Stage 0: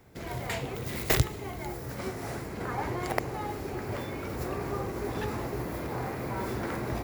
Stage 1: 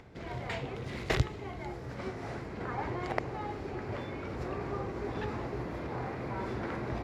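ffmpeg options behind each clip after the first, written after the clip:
ffmpeg -i in.wav -af "lowpass=4200,acompressor=mode=upward:threshold=-44dB:ratio=2.5,volume=-3dB" out.wav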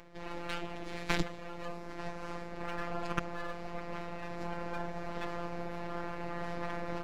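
ffmpeg -i in.wav -af "afftfilt=real='hypot(re,im)*cos(PI*b)':imag='0':win_size=1024:overlap=0.75,aeval=exprs='abs(val(0))':channel_layout=same,volume=3dB" out.wav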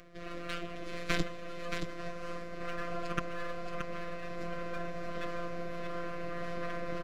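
ffmpeg -i in.wav -filter_complex "[0:a]asuperstop=centerf=910:order=20:qfactor=4.1,asplit=2[link_01][link_02];[link_02]aecho=0:1:625:0.501[link_03];[link_01][link_03]amix=inputs=2:normalize=0" out.wav

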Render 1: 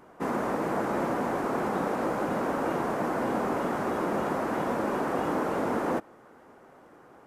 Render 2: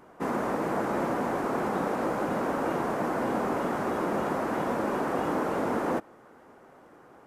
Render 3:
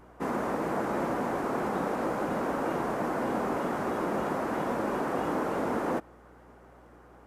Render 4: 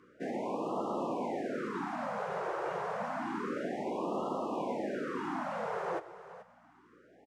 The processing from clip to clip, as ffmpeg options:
ffmpeg -i in.wav -af anull out.wav
ffmpeg -i in.wav -af "aeval=exprs='val(0)+0.00158*(sin(2*PI*60*n/s)+sin(2*PI*2*60*n/s)/2+sin(2*PI*3*60*n/s)/3+sin(2*PI*4*60*n/s)/4+sin(2*PI*5*60*n/s)/5)':channel_layout=same,volume=-1.5dB" out.wav
ffmpeg -i in.wav -af "highpass=190,lowpass=6200,aecho=1:1:430:0.188,afftfilt=real='re*(1-between(b*sr/1024,240*pow(1900/240,0.5+0.5*sin(2*PI*0.29*pts/sr))/1.41,240*pow(1900/240,0.5+0.5*sin(2*PI*0.29*pts/sr))*1.41))':imag='im*(1-between(b*sr/1024,240*pow(1900/240,0.5+0.5*sin(2*PI*0.29*pts/sr))/1.41,240*pow(1900/240,0.5+0.5*sin(2*PI*0.29*pts/sr))*1.41))':win_size=1024:overlap=0.75,volume=-4dB" out.wav

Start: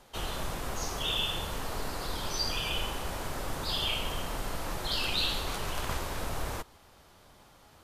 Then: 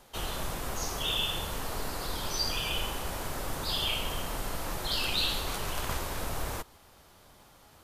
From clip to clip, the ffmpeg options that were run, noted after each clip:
ffmpeg -i in.wav -af "highshelf=frequency=10000:gain=7" out.wav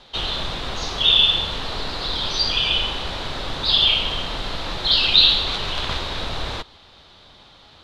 ffmpeg -i in.wav -af "lowpass=frequency=3800:width_type=q:width=4.4,volume=6dB" out.wav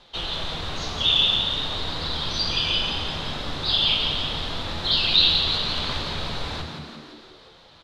ffmpeg -i in.wav -filter_complex "[0:a]flanger=delay=5.8:depth=1.2:regen=73:speed=0.4:shape=sinusoidal,asplit=9[link_01][link_02][link_03][link_04][link_05][link_06][link_07][link_08][link_09];[link_02]adelay=172,afreqshift=73,volume=-6.5dB[link_10];[link_03]adelay=344,afreqshift=146,volume=-10.8dB[link_11];[link_04]adelay=516,afreqshift=219,volume=-15.1dB[link_12];[link_05]adelay=688,afreqshift=292,volume=-19.4dB[link_13];[link_06]adelay=860,afreqshift=365,volume=-23.7dB[link_14];[link_07]adelay=1032,afreqshift=438,volume=-28dB[link_15];[link_08]adelay=1204,afreqshift=511,volume=-32.3dB[link_16];[link_09]adelay=1376,afreqshift=584,volume=-36.6dB[link_17];[link_01][link_10][link_11][link_12][link_13][link_14][link_15][link_16][link_17]amix=inputs=9:normalize=0" out.wav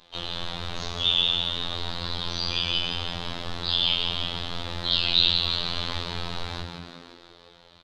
ffmpeg -i in.wav -filter_complex "[0:a]asplit=2[link_01][link_02];[link_02]adelay=260,highpass=300,lowpass=3400,asoftclip=type=hard:threshold=-15dB,volume=-17dB[link_03];[link_01][link_03]amix=inputs=2:normalize=0,afftfilt=real='hypot(re,im)*cos(PI*b)':imag='0':win_size=2048:overlap=0.75" out.wav

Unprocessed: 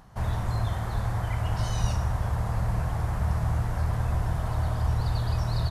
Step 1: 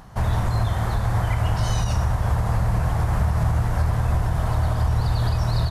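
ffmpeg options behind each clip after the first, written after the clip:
ffmpeg -i in.wav -af "alimiter=limit=-20.5dB:level=0:latency=1:release=115,volume=8dB" out.wav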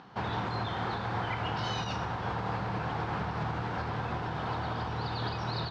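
ffmpeg -i in.wav -af "highpass=260,equalizer=frequency=620:width_type=q:width=4:gain=-10,equalizer=frequency=1100:width_type=q:width=4:gain=-4,equalizer=frequency=1900:width_type=q:width=4:gain=-5,lowpass=frequency=4200:width=0.5412,lowpass=frequency=4200:width=1.3066" out.wav

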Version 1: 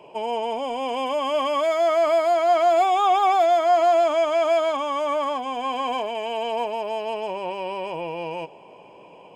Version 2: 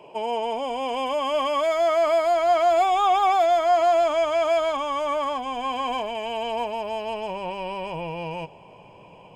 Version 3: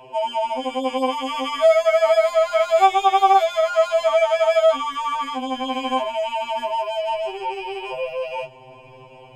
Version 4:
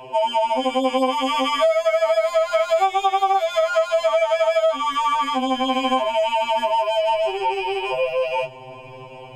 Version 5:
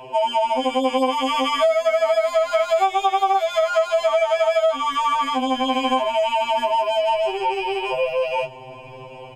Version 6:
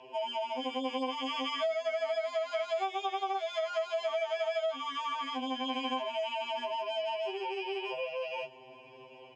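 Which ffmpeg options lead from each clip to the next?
ffmpeg -i in.wav -af "asubboost=boost=6:cutoff=130" out.wav
ffmpeg -i in.wav -af "afftfilt=real='re*2.45*eq(mod(b,6),0)':imag='im*2.45*eq(mod(b,6),0)':win_size=2048:overlap=0.75,volume=6dB" out.wav
ffmpeg -i in.wav -af "acompressor=threshold=-21dB:ratio=6,volume=5.5dB" out.wav
ffmpeg -i in.wav -filter_complex "[0:a]asplit=2[link_01][link_02];[link_02]adelay=1050,volume=-30dB,highshelf=frequency=4000:gain=-23.6[link_03];[link_01][link_03]amix=inputs=2:normalize=0" out.wav
ffmpeg -i in.wav -af "highpass=290,equalizer=frequency=560:width_type=q:width=4:gain=-8,equalizer=frequency=850:width_type=q:width=4:gain=-8,equalizer=frequency=1300:width_type=q:width=4:gain=-9,equalizer=frequency=2300:width_type=q:width=4:gain=-3,equalizer=frequency=4100:width_type=q:width=4:gain=-4,lowpass=frequency=5700:width=0.5412,lowpass=frequency=5700:width=1.3066,volume=-8.5dB" out.wav

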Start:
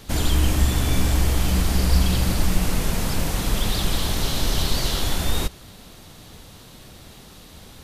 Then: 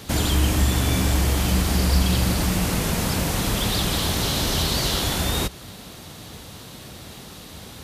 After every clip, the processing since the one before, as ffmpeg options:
ffmpeg -i in.wav -filter_complex "[0:a]highpass=62,asplit=2[link_01][link_02];[link_02]acompressor=threshold=-29dB:ratio=6,volume=-2dB[link_03];[link_01][link_03]amix=inputs=2:normalize=0" out.wav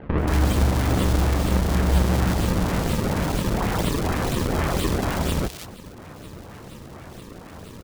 ffmpeg -i in.wav -filter_complex "[0:a]acrusher=samples=35:mix=1:aa=0.000001:lfo=1:lforange=56:lforate=2.1,acrossover=split=2500[link_01][link_02];[link_02]adelay=180[link_03];[link_01][link_03]amix=inputs=2:normalize=0" out.wav

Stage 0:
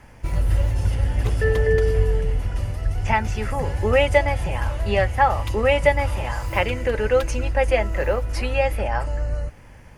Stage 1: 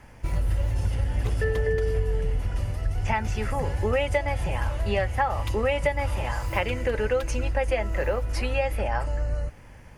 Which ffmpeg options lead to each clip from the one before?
ffmpeg -i in.wav -af "acompressor=threshold=-18dB:ratio=6,volume=-2dB" out.wav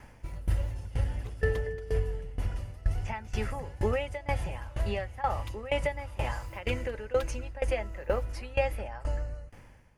ffmpeg -i in.wav -af "aeval=exprs='val(0)*pow(10,-19*if(lt(mod(2.1*n/s,1),2*abs(2.1)/1000),1-mod(2.1*n/s,1)/(2*abs(2.1)/1000),(mod(2.1*n/s,1)-2*abs(2.1)/1000)/(1-2*abs(2.1)/1000))/20)':channel_layout=same" out.wav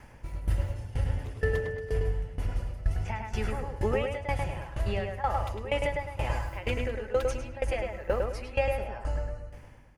ffmpeg -i in.wav -filter_complex "[0:a]asplit=2[link_01][link_02];[link_02]adelay=104,lowpass=frequency=2600:poles=1,volume=-3dB,asplit=2[link_03][link_04];[link_04]adelay=104,lowpass=frequency=2600:poles=1,volume=0.32,asplit=2[link_05][link_06];[link_06]adelay=104,lowpass=frequency=2600:poles=1,volume=0.32,asplit=2[link_07][link_08];[link_08]adelay=104,lowpass=frequency=2600:poles=1,volume=0.32[link_09];[link_01][link_03][link_05][link_07][link_09]amix=inputs=5:normalize=0" out.wav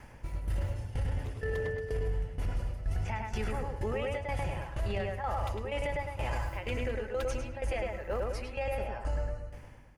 ffmpeg -i in.wav -af "alimiter=level_in=1dB:limit=-24dB:level=0:latency=1:release=11,volume=-1dB" out.wav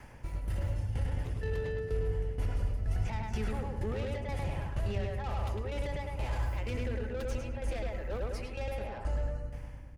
ffmpeg -i in.wav -filter_complex "[0:a]acrossover=split=350[link_01][link_02];[link_01]aecho=1:1:191|382|573|764|955|1146|1337|1528:0.596|0.351|0.207|0.122|0.0722|0.0426|0.0251|0.0148[link_03];[link_02]asoftclip=type=tanh:threshold=-38.5dB[link_04];[link_03][link_04]amix=inputs=2:normalize=0" out.wav

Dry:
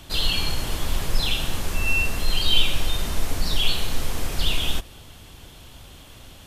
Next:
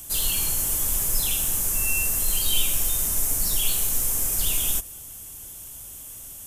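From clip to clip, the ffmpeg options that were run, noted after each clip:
ffmpeg -i in.wav -af "aexciter=amount=4.8:drive=10:freq=6200,volume=-6.5dB" out.wav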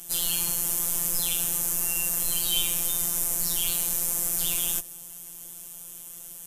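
ffmpeg -i in.wav -af "highpass=frequency=48:poles=1,afftfilt=real='hypot(re,im)*cos(PI*b)':imag='0':win_size=1024:overlap=0.75,volume=1.5dB" out.wav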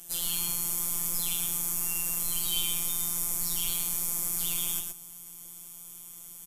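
ffmpeg -i in.wav -af "aecho=1:1:117:0.562,volume=-5dB" out.wav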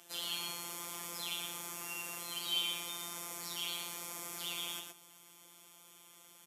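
ffmpeg -i in.wav -filter_complex "[0:a]highpass=100,acrossover=split=290 4700:gain=0.178 1 0.141[link_01][link_02][link_03];[link_01][link_02][link_03]amix=inputs=3:normalize=0" out.wav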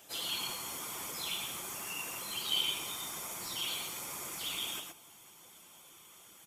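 ffmpeg -i in.wav -af "afftfilt=real='hypot(re,im)*cos(2*PI*random(0))':imag='hypot(re,im)*sin(2*PI*random(1))':win_size=512:overlap=0.75,volume=8.5dB" out.wav

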